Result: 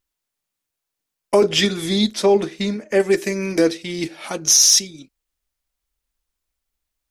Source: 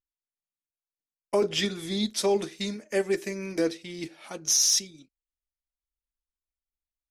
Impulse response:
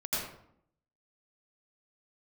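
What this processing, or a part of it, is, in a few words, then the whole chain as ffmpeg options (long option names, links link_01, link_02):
parallel compression: -filter_complex "[0:a]asplit=2[link_01][link_02];[link_02]acompressor=threshold=-40dB:ratio=6,volume=-2dB[link_03];[link_01][link_03]amix=inputs=2:normalize=0,asettb=1/sr,asplit=3[link_04][link_05][link_06];[link_04]atrim=end=2.144[link_07];[link_05]atrim=start=2.14:end=3,asetpts=PTS-STARTPTS,afade=type=in:duration=0.004:curve=qsin,afade=type=out:start_time=0.856:duration=0.004:curve=qsin,highshelf=frequency=3900:gain=-11.5[link_08];[link_06]atrim=start=2.996[link_09];[link_07][link_08]acrossfade=duration=0.004:curve1=hsin:curve2=qsin[link_10];[link_10][link_09]acrossfade=duration=0.004:curve1=qsin:curve2=hsin,volume=8.5dB"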